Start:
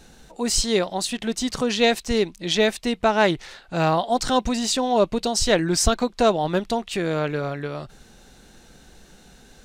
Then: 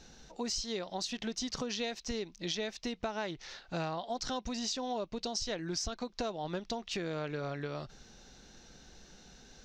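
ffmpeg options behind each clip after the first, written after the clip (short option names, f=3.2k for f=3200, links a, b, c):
-af "highshelf=f=7.5k:t=q:w=3:g=-10,acompressor=threshold=-26dB:ratio=10,volume=-7dB"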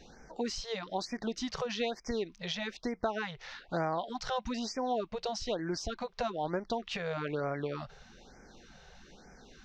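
-af "bass=f=250:g=-5,treble=f=4k:g=-13,afftfilt=real='re*(1-between(b*sr/1024,260*pow(3500/260,0.5+0.5*sin(2*PI*1.1*pts/sr))/1.41,260*pow(3500/260,0.5+0.5*sin(2*PI*1.1*pts/sr))*1.41))':imag='im*(1-between(b*sr/1024,260*pow(3500/260,0.5+0.5*sin(2*PI*1.1*pts/sr))/1.41,260*pow(3500/260,0.5+0.5*sin(2*PI*1.1*pts/sr))*1.41))':win_size=1024:overlap=0.75,volume=5dB"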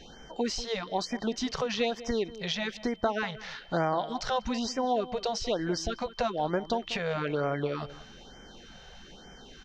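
-filter_complex "[0:a]aeval=exprs='val(0)+0.001*sin(2*PI*3100*n/s)':c=same,asplit=2[a][b];[b]adelay=190,lowpass=f=1.8k:p=1,volume=-15dB,asplit=2[c][d];[d]adelay=190,lowpass=f=1.8k:p=1,volume=0.18[e];[a][c][e]amix=inputs=3:normalize=0,volume=4.5dB"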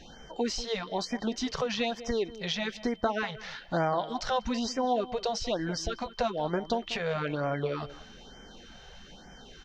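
-af "flanger=delay=1.1:depth=3.5:regen=-64:speed=0.54:shape=sinusoidal,volume=4dB"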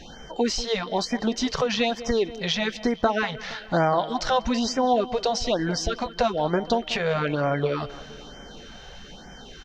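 -filter_complex "[0:a]asplit=2[a][b];[b]adelay=468,lowpass=f=3k:p=1,volume=-22.5dB,asplit=2[c][d];[d]adelay=468,lowpass=f=3k:p=1,volume=0.5,asplit=2[e][f];[f]adelay=468,lowpass=f=3k:p=1,volume=0.5[g];[a][c][e][g]amix=inputs=4:normalize=0,volume=6.5dB"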